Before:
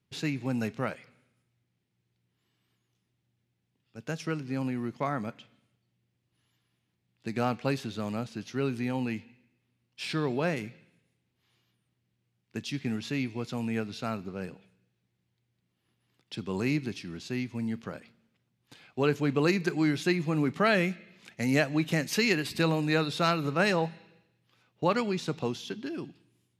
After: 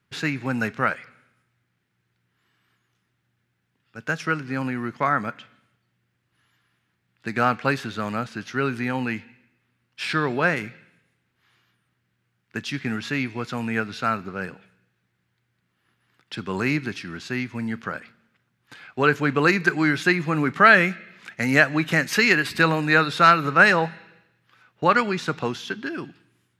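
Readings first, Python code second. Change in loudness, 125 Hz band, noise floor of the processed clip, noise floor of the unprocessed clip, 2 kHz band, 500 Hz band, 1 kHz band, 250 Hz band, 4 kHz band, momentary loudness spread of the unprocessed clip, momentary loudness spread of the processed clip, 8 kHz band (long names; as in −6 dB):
+8.5 dB, +3.5 dB, −74 dBFS, −79 dBFS, +13.5 dB, +5.0 dB, +12.0 dB, +4.0 dB, +5.5 dB, 14 LU, 17 LU, +4.0 dB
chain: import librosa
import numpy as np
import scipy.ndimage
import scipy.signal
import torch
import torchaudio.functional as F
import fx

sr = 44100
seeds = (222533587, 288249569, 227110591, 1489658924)

y = fx.peak_eq(x, sr, hz=1500.0, db=13.0, octaves=1.1)
y = y * 10.0 ** (3.5 / 20.0)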